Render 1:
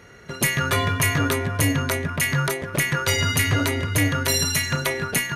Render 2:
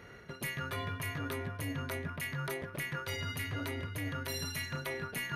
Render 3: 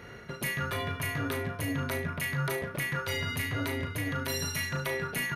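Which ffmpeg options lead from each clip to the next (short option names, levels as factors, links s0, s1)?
-af "equalizer=f=7200:w=1.5:g=-9.5,areverse,acompressor=threshold=0.0282:ratio=6,areverse,volume=0.596"
-af "aecho=1:1:36|73:0.422|0.188,volume=1.78"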